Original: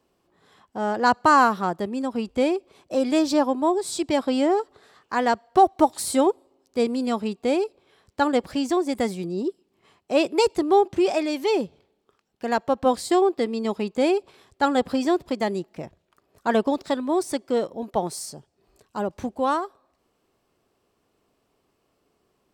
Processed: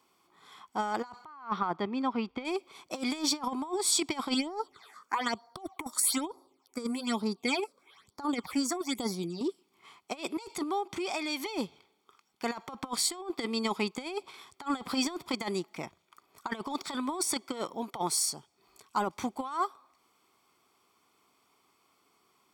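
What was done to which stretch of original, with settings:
0:01.25–0:02.45: high-frequency loss of the air 250 metres
0:04.34–0:09.41: all-pass phaser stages 8, 1.1 Hz, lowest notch 100–2,900 Hz
0:10.63–0:11.46: downward compressor 3 to 1, threshold −31 dBFS
whole clip: high-pass filter 820 Hz 6 dB per octave; compressor whose output falls as the input rises −31 dBFS, ratio −0.5; comb filter 0.9 ms, depth 60%

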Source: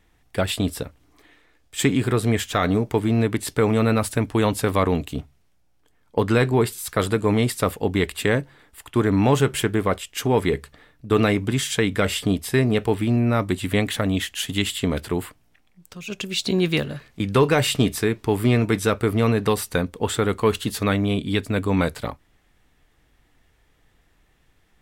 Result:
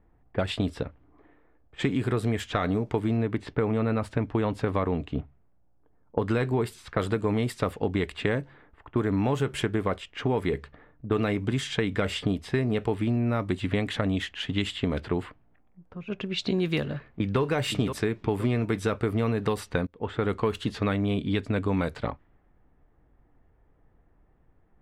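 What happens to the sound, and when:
0:03.17–0:06.22: high-shelf EQ 4,300 Hz −11.5 dB
0:16.88–0:17.40: delay throw 520 ms, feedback 35%, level −9.5 dB
0:19.87–0:20.31: fade in, from −24 dB
whole clip: low-pass that shuts in the quiet parts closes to 1,000 Hz, open at −16.5 dBFS; high-shelf EQ 4,300 Hz −9.5 dB; downward compressor 4 to 1, threshold −23 dBFS

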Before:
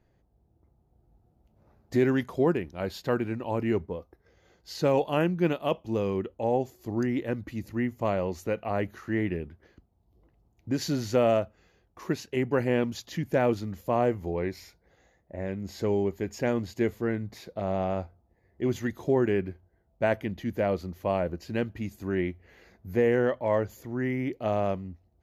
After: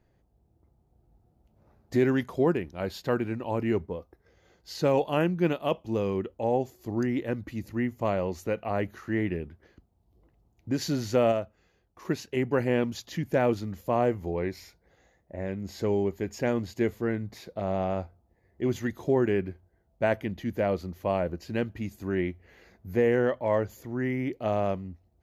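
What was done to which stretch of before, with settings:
0:11.32–0:12.05: clip gain −4 dB

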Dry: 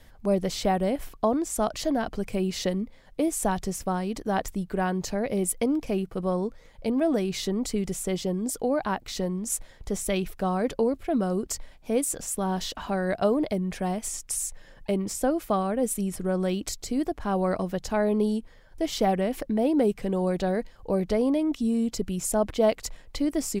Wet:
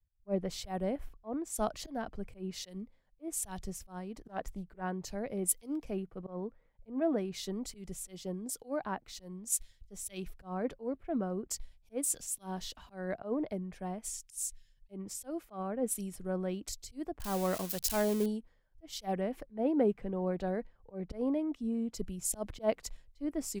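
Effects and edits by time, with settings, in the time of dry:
0:04.19–0:04.81: highs frequency-modulated by the lows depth 0.2 ms
0:17.20–0:18.26: spike at every zero crossing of −21 dBFS
whole clip: volume swells 108 ms; multiband upward and downward expander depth 100%; level −9 dB

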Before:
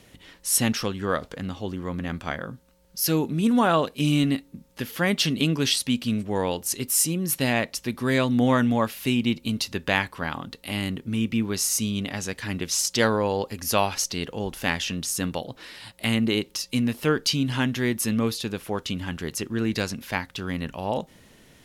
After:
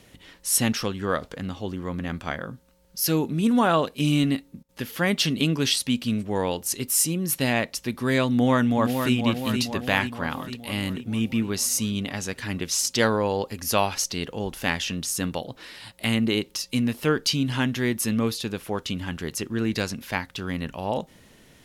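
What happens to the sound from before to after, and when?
0:04.30–0:05.02: duck −18.5 dB, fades 0.33 s logarithmic
0:08.30–0:09.15: delay throw 470 ms, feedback 60%, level −6 dB

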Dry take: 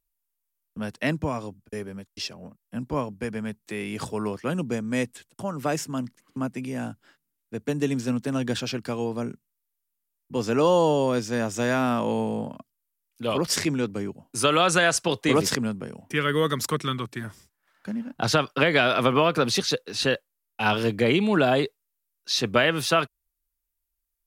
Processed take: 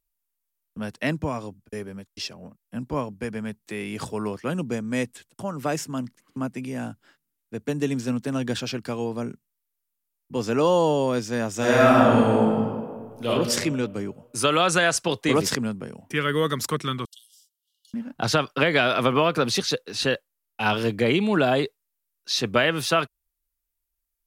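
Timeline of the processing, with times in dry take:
0:11.57–0:13.28: thrown reverb, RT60 1.7 s, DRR −6.5 dB
0:17.05–0:17.94: linear-phase brick-wall high-pass 2,800 Hz

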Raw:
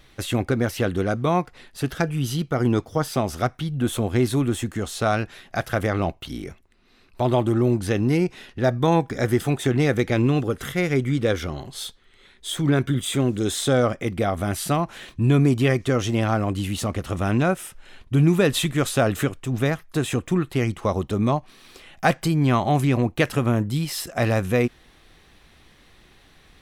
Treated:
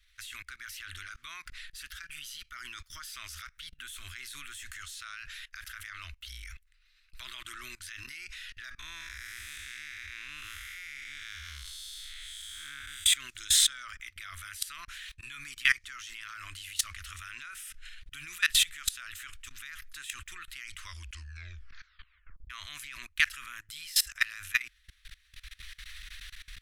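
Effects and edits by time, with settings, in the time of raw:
0:08.79–0:13.06: spectrum smeared in time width 286 ms
0:20.80: tape stop 1.70 s
whole clip: automatic gain control gain up to 12.5 dB; inverse Chebyshev band-stop filter 110–840 Hz, stop band 40 dB; output level in coarse steps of 22 dB

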